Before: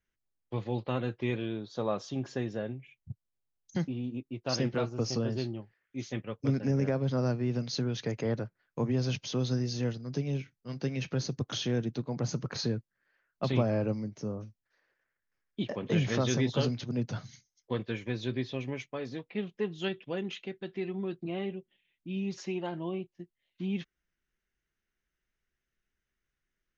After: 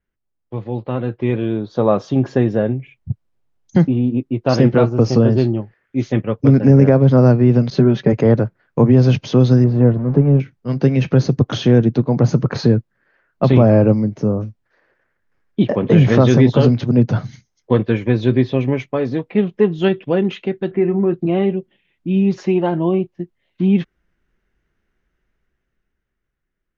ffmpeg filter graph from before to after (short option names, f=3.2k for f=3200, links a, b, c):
-filter_complex "[0:a]asettb=1/sr,asplit=3[a][b][c];[a]atrim=end=7.704[d];[b]atrim=start=7.7:end=8.13,asetpts=PTS-STARTPTS,afade=t=in:d=0.004:c=qsin,afade=t=out:st=0.426:d=0.004:c=qsin,lowpass=f=2.8k:p=1,agate=range=-12dB:threshold=-48dB:ratio=16:release=100:detection=peak,aecho=1:1:5.2:0.71,atrim=end_sample=18963[e];[c]atrim=start=8.126[f];[d][e]acrossfade=d=0.004:c1=hsin:c2=qsin[g];[g][f]acrossfade=d=0.004:c1=qsin:c2=hsin,asettb=1/sr,asplit=3[h][i][j];[h]atrim=end=9.644[k];[i]atrim=start=9.64:end=10.4,asetpts=PTS-STARTPTS,afade=t=in:d=0.004:c=qsin,afade=t=out:st=0.756:d=0.004:c=qsin,aeval=exprs='val(0)+0.5*0.0075*sgn(val(0))':c=same,lowpass=1.3k[l];[j]atrim=start=10.396[m];[k][l]acrossfade=d=0.004:c1=hsin:c2=qsin[n];[n][m]acrossfade=d=0.004:c1=qsin:c2=hsin,asettb=1/sr,asplit=3[o][p][q];[o]atrim=end=20.714[r];[p]atrim=start=20.71:end=21.14,asetpts=PTS-STARTPTS,afade=t=in:d=0.004:c=qsin,afade=t=out:st=0.426:d=0.004:c=qsin,lowpass=f=2.3k:w=0.5412,lowpass=f=2.3k:w=1.3066,acompressor=mode=upward:threshold=-49dB:ratio=2.5:attack=3.2:release=140:knee=2.83:detection=peak,asplit=2[s][t];[t]adelay=29,volume=-13.5dB[u];[s][u]amix=inputs=2:normalize=0,atrim=end_sample=18963[v];[q]atrim=start=21.136[w];[r][v]acrossfade=d=0.004:c1=hsin:c2=qsin[x];[x][w]acrossfade=d=0.004:c1=qsin:c2=hsin,lowpass=f=1k:p=1,dynaudnorm=f=170:g=17:m=11dB,alimiter=level_in=9dB:limit=-1dB:release=50:level=0:latency=1,volume=-1dB"